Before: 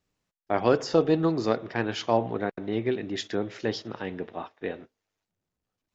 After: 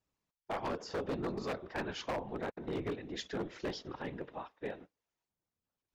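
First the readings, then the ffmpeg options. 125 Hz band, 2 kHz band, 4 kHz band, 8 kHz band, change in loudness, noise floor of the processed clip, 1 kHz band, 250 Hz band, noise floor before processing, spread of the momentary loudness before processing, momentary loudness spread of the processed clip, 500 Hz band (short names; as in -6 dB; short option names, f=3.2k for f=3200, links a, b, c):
-11.5 dB, -8.5 dB, -9.0 dB, n/a, -12.0 dB, under -85 dBFS, -10.0 dB, -12.5 dB, under -85 dBFS, 13 LU, 6 LU, -13.0 dB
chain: -af "afftfilt=real='hypot(re,im)*cos(2*PI*random(0))':imag='hypot(re,im)*sin(2*PI*random(1))':win_size=512:overlap=0.75,alimiter=limit=-22.5dB:level=0:latency=1:release=305,equalizer=f=1k:w=2.8:g=4,aeval=exprs='0.0422*(abs(mod(val(0)/0.0422+3,4)-2)-1)':c=same,volume=-2dB"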